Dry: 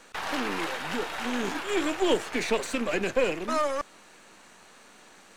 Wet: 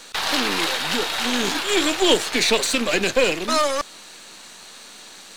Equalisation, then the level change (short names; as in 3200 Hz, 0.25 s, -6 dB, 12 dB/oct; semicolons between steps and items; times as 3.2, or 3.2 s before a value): bell 4000 Hz +9 dB 0.85 oct; high shelf 5200 Hz +10 dB; +5.5 dB